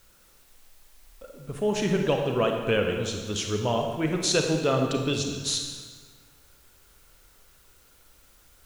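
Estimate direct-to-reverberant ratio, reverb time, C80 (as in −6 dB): 2.5 dB, 1.5 s, 5.5 dB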